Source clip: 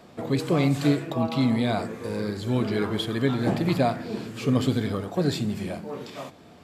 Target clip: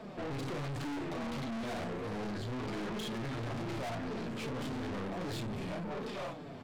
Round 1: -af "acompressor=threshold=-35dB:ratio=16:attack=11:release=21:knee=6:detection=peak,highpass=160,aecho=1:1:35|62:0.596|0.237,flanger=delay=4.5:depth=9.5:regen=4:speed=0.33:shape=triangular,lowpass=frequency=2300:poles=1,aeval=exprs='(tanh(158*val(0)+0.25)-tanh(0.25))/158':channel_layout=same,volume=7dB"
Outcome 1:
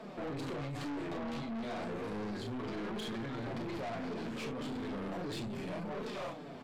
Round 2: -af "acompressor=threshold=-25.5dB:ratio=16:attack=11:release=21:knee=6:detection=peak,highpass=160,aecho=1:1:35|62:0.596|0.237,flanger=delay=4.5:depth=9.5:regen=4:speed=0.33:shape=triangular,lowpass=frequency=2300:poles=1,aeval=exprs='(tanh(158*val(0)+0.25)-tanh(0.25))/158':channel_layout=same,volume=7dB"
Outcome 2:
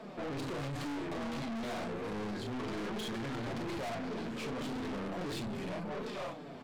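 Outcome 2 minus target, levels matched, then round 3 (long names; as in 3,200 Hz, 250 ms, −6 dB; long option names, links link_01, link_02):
125 Hz band −3.0 dB
-af "acompressor=threshold=-25.5dB:ratio=16:attack=11:release=21:knee=6:detection=peak,highpass=49,aecho=1:1:35|62:0.596|0.237,flanger=delay=4.5:depth=9.5:regen=4:speed=0.33:shape=triangular,lowpass=frequency=2300:poles=1,aeval=exprs='(tanh(158*val(0)+0.25)-tanh(0.25))/158':channel_layout=same,volume=7dB"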